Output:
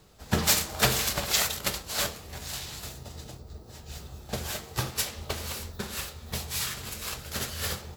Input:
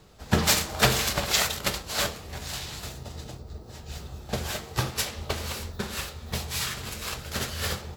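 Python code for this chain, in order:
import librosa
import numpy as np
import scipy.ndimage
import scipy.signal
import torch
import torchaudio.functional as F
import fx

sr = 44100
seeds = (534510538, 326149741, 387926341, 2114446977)

y = fx.high_shelf(x, sr, hz=7300.0, db=7.0)
y = F.gain(torch.from_numpy(y), -3.5).numpy()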